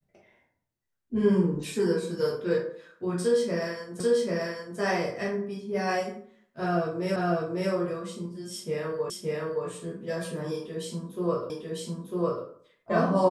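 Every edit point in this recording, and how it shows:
4.00 s: repeat of the last 0.79 s
7.16 s: repeat of the last 0.55 s
9.10 s: repeat of the last 0.57 s
11.50 s: repeat of the last 0.95 s

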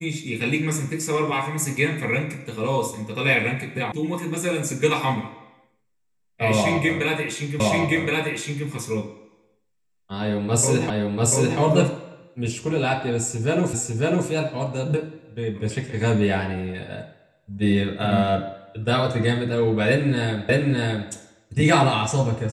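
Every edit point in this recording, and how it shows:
3.92 s: sound stops dead
7.60 s: repeat of the last 1.07 s
10.90 s: repeat of the last 0.69 s
13.73 s: repeat of the last 0.55 s
20.49 s: repeat of the last 0.61 s

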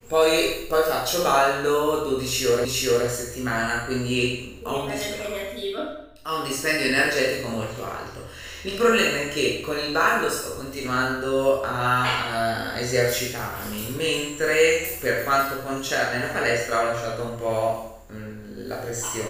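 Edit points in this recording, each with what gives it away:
2.65 s: repeat of the last 0.42 s

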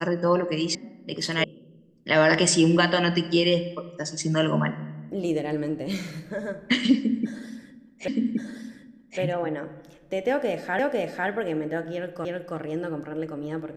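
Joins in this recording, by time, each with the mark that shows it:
0.75 s: sound stops dead
1.44 s: sound stops dead
8.08 s: repeat of the last 1.12 s
10.79 s: repeat of the last 0.5 s
12.25 s: repeat of the last 0.32 s

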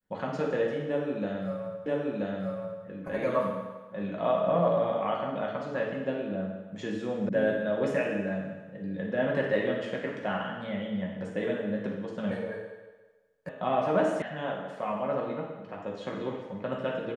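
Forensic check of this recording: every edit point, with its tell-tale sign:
1.86 s: repeat of the last 0.98 s
7.29 s: sound stops dead
13.49 s: sound stops dead
14.22 s: sound stops dead

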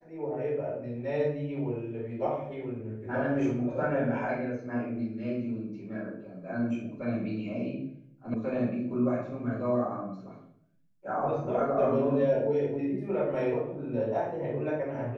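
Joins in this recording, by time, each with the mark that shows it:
8.34 s: sound stops dead

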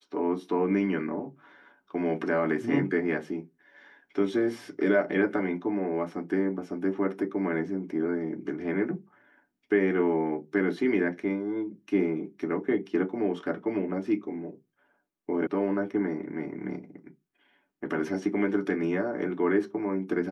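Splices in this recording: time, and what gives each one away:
15.47 s: sound stops dead

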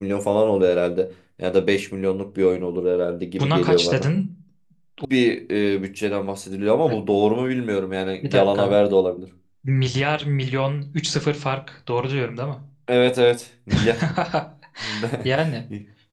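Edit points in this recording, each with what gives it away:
5.05 s: sound stops dead

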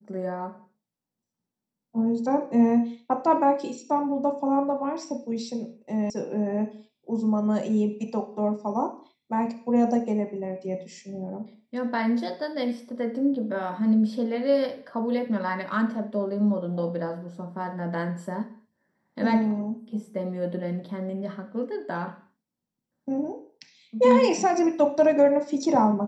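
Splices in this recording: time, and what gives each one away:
6.10 s: sound stops dead

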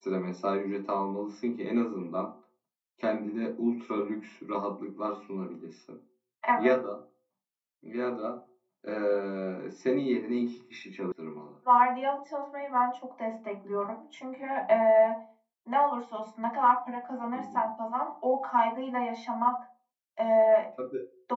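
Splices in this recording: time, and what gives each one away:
11.12 s: sound stops dead

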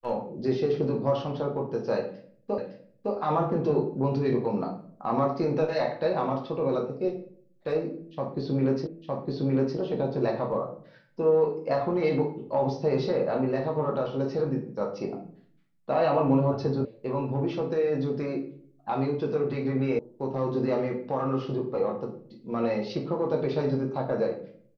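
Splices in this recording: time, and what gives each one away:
2.58 s: repeat of the last 0.56 s
8.87 s: repeat of the last 0.91 s
16.85 s: sound stops dead
19.99 s: sound stops dead

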